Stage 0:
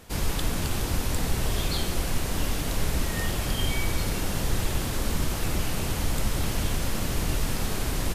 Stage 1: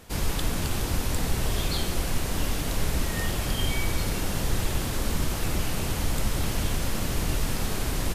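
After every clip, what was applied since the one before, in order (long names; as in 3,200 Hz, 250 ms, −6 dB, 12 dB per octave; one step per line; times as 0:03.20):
no processing that can be heard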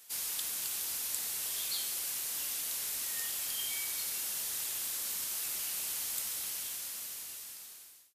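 fade-out on the ending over 1.98 s
first difference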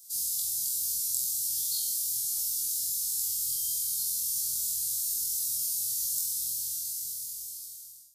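inverse Chebyshev band-stop filter 350–2,100 Hz, stop band 50 dB
on a send: flutter between parallel walls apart 4 metres, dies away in 0.45 s
on the sum: level +3.5 dB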